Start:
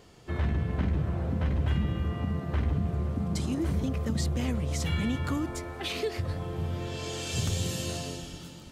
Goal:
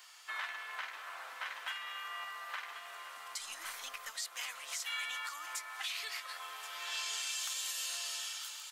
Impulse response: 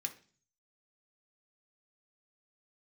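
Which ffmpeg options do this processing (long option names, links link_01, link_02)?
-filter_complex "[0:a]highpass=frequency=1100:width=0.5412,highpass=frequency=1100:width=1.3066,highshelf=frequency=10000:gain=7,alimiter=level_in=9dB:limit=-24dB:level=0:latency=1:release=276,volume=-9dB,asettb=1/sr,asplit=3[link_01][link_02][link_03];[link_01]atrim=end=3.404[link_04];[link_02]atrim=start=3.4:end=4.13,asetpts=PTS-STARTPTS,afade=type=in:duration=0.004:curve=qsin,afade=type=out:start_time=0.726:duration=0.004:curve=qsin,aeval=exprs='0.0237*(cos(1*acos(clip(val(0)/0.0237,-1,1)))-cos(1*PI/2))+0.000473*(cos(6*acos(clip(val(0)/0.0237,-1,1)))-cos(6*PI/2))':channel_layout=same[link_05];[link_03]atrim=start=4.126[link_06];[link_04][link_05]acrossfade=duration=0.004:curve1=hsin:curve2=qsin[link_07];[link_07][link_06]acrossfade=duration=0.004:curve1=qsin:curve2=hsin,asplit=2[link_08][link_09];[link_09]aecho=0:1:1079:0.237[link_10];[link_08][link_10]amix=inputs=2:normalize=0,volume=4.5dB"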